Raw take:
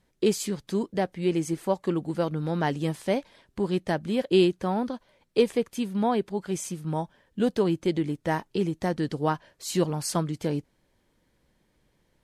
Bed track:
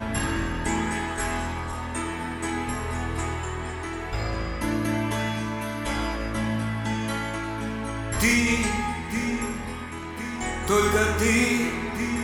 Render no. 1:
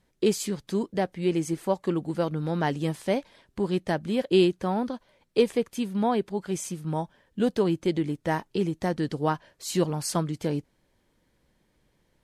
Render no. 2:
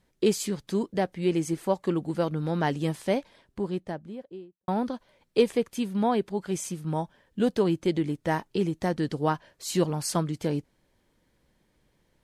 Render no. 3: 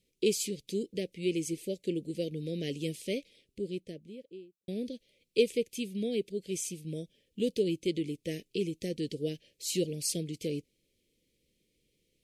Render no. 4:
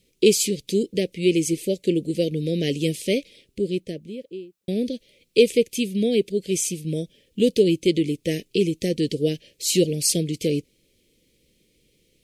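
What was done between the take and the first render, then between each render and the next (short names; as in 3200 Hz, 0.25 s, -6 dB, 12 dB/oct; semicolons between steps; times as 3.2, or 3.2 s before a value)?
nothing audible
3.04–4.68 studio fade out
elliptic band-stop 480–2400 Hz, stop band 50 dB; low shelf 310 Hz -10.5 dB
gain +11.5 dB; limiter -3 dBFS, peak gain reduction 2.5 dB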